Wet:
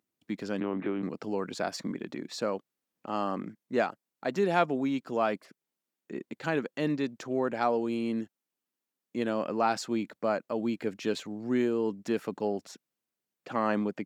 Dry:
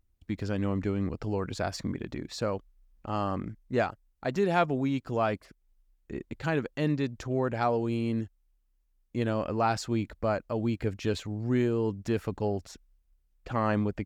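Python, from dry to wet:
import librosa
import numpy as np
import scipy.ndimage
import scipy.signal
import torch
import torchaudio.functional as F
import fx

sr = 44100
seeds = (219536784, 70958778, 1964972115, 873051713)

y = fx.lpc_vocoder(x, sr, seeds[0], excitation='pitch_kept', order=8, at=(0.6, 1.03))
y = scipy.signal.sosfilt(scipy.signal.butter(4, 180.0, 'highpass', fs=sr, output='sos'), y)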